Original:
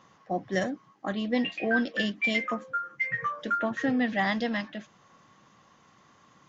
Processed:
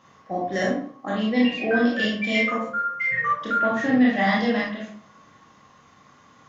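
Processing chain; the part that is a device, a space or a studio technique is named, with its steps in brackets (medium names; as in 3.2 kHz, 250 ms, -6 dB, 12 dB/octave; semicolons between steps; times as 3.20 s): bathroom (reverberation RT60 0.50 s, pre-delay 23 ms, DRR -4.5 dB)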